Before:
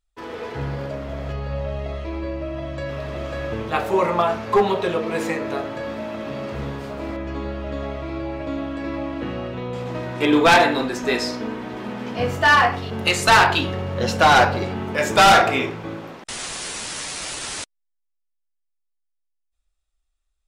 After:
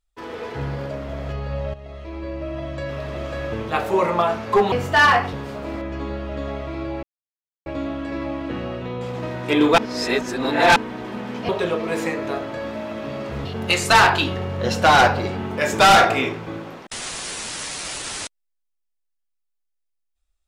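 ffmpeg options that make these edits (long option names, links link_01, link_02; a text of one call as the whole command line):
ffmpeg -i in.wav -filter_complex "[0:a]asplit=9[link_01][link_02][link_03][link_04][link_05][link_06][link_07][link_08][link_09];[link_01]atrim=end=1.74,asetpts=PTS-STARTPTS,afade=type=out:start_time=1.736:duration=0.004:curve=hsin:silence=0.223872[link_10];[link_02]atrim=start=1.74:end=4.722,asetpts=PTS-STARTPTS,afade=type=in:duration=0.77:silence=0.223872[link_11];[link_03]atrim=start=12.208:end=12.822[link_12];[link_04]atrim=start=6.678:end=8.38,asetpts=PTS-STARTPTS,afade=type=out:start_time=1.698:duration=0.004:curve=hsin,apad=pad_dur=0.63[link_13];[link_05]atrim=start=8.38:end=10.502,asetpts=PTS-STARTPTS,afade=type=in:duration=0.004:curve=hsin[link_14];[link_06]atrim=start=10.498:end=11.482,asetpts=PTS-STARTPTS,areverse[link_15];[link_07]atrim=start=11.478:end=12.212[link_16];[link_08]atrim=start=4.718:end=6.682[link_17];[link_09]atrim=start=12.818[link_18];[link_10][link_11]concat=n=2:v=0:a=1[link_19];[link_19][link_12]acrossfade=duration=0.004:curve1=hsin:curve2=hsin[link_20];[link_13][link_14]concat=n=2:v=0:a=1[link_21];[link_20][link_21]acrossfade=duration=0.004:curve1=hsin:curve2=hsin[link_22];[link_22][link_15]acrossfade=duration=0.004:curve1=hsin:curve2=hsin[link_23];[link_23][link_16]acrossfade=duration=0.004:curve1=hsin:curve2=hsin[link_24];[link_24][link_17]acrossfade=duration=0.004:curve1=hsin:curve2=hsin[link_25];[link_25][link_18]acrossfade=duration=0.004:curve1=hsin:curve2=hsin" out.wav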